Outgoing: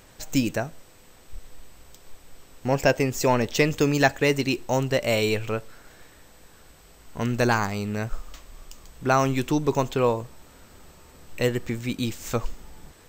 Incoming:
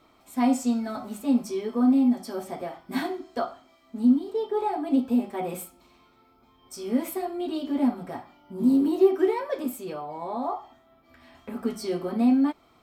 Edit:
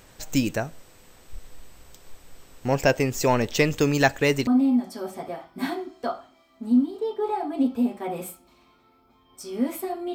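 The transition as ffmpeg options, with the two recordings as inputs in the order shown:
-filter_complex "[0:a]apad=whole_dur=10.14,atrim=end=10.14,atrim=end=4.472[a];[1:a]atrim=start=1.798:end=7.47[b];[a][b]acrossfade=d=0.004:c1=hsin:c2=hsin"

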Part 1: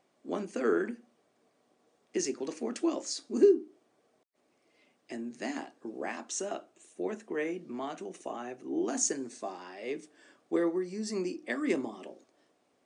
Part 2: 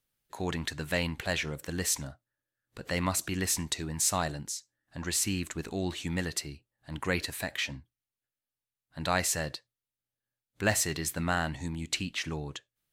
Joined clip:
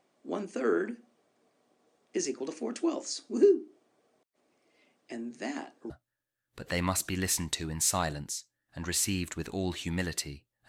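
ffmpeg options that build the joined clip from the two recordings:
-filter_complex "[0:a]apad=whole_dur=10.68,atrim=end=10.68,atrim=end=5.902[a];[1:a]atrim=start=2.088:end=6.87[b];[a][b]acrossfade=d=0.004:c1=hsin:c2=hsin"

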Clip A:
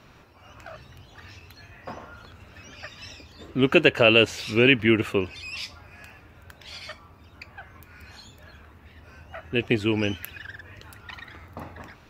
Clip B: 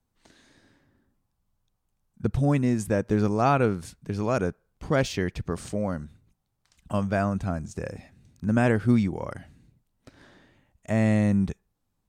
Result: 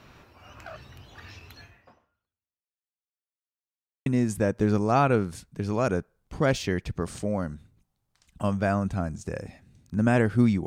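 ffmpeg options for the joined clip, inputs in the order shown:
-filter_complex "[0:a]apad=whole_dur=10.66,atrim=end=10.66,asplit=2[a][b];[a]atrim=end=3.12,asetpts=PTS-STARTPTS,afade=t=out:st=1.61:d=1.51:c=exp[c];[b]atrim=start=3.12:end=4.06,asetpts=PTS-STARTPTS,volume=0[d];[1:a]atrim=start=2.56:end=9.16,asetpts=PTS-STARTPTS,afade=t=in:d=0.004:c=hsin[e];[c][d][e]concat=n=3:v=0:a=1"

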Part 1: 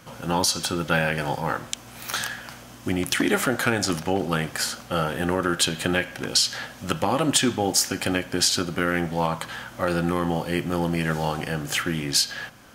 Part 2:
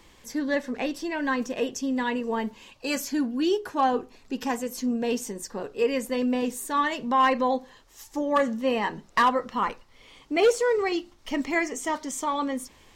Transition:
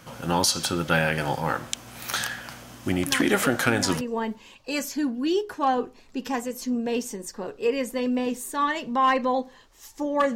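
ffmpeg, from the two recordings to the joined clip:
-filter_complex "[1:a]asplit=2[a][b];[0:a]apad=whole_dur=10.35,atrim=end=10.35,atrim=end=4.012[c];[b]atrim=start=2.168:end=8.51[d];[a]atrim=start=1.22:end=2.17,asetpts=PTS-STARTPTS,volume=-6.5dB,afade=t=in:d=0.004:c=hsin,afade=t=out:st=0.946:d=0.004:c=hsin,adelay=3060[e];[c][d]acrossfade=d=0.004:c1=hsin:c2=hsin[f];[f][e]amix=inputs=2:normalize=0"

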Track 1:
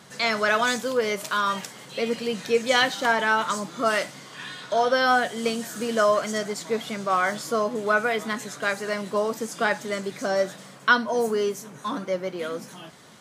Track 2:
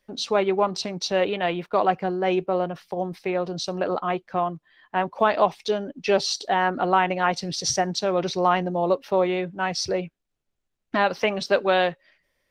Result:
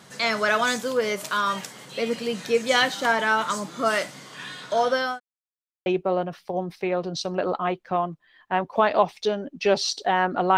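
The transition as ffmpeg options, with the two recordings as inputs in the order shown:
-filter_complex "[0:a]apad=whole_dur=10.57,atrim=end=10.57,asplit=2[a][b];[a]atrim=end=5.2,asetpts=PTS-STARTPTS,afade=t=out:st=4.79:d=0.41:c=qsin[c];[b]atrim=start=5.2:end=5.86,asetpts=PTS-STARTPTS,volume=0[d];[1:a]atrim=start=2.29:end=7,asetpts=PTS-STARTPTS,afade=t=in:d=0.004:c=hsin[e];[c][d][e]concat=n=3:v=0:a=1"

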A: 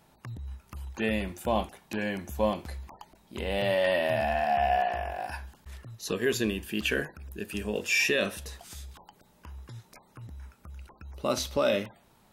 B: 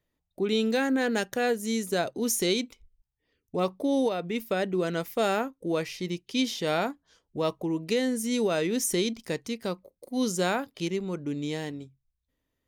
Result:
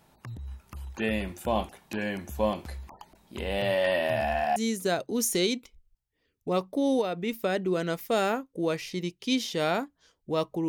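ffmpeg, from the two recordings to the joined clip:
-filter_complex "[0:a]apad=whole_dur=10.68,atrim=end=10.68,atrim=end=4.562[a];[1:a]atrim=start=1.628:end=7.75[b];[a][b]acrossfade=d=0.004:c1=hsin:c2=hsin"

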